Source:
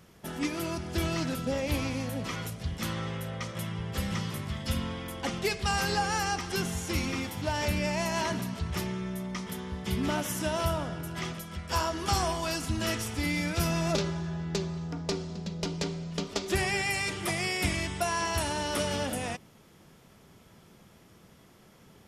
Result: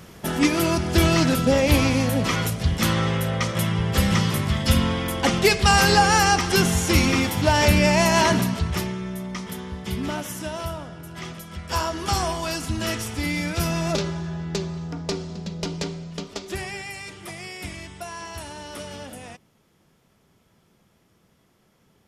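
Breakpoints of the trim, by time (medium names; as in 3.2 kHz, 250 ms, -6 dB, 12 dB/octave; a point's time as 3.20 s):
8.41 s +12 dB
8.96 s +4 dB
9.60 s +4 dB
10.92 s -3 dB
11.67 s +4 dB
15.75 s +4 dB
16.95 s -6 dB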